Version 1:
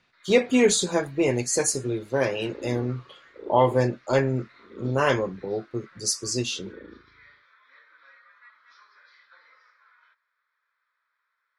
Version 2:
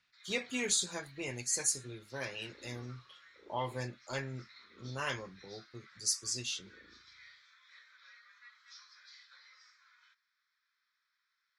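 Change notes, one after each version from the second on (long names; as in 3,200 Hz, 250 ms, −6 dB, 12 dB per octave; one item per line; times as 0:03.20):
first sound: remove head-to-tape spacing loss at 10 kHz 32 dB
master: add guitar amp tone stack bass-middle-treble 5-5-5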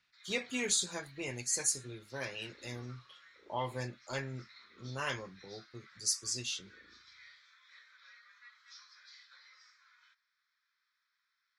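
second sound −3.5 dB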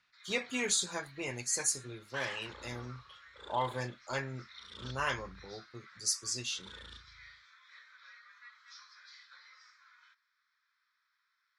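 second sound: remove resonant band-pass 320 Hz, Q 2.5
master: add parametric band 1,100 Hz +5.5 dB 1.5 octaves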